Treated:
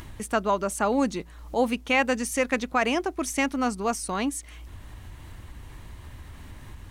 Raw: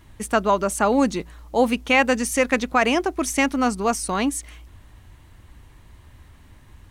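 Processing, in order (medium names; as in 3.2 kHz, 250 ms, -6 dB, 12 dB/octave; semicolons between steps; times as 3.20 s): upward compressor, threshold -26 dBFS; trim -5 dB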